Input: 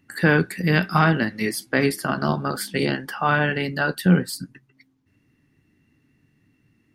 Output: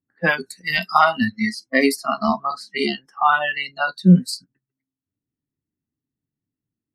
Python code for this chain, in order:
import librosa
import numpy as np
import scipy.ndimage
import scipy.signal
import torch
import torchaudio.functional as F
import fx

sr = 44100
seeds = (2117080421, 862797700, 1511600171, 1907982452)

y = fx.env_lowpass(x, sr, base_hz=1000.0, full_db=-15.5)
y = fx.noise_reduce_blind(y, sr, reduce_db=29)
y = y * librosa.db_to_amplitude(6.0)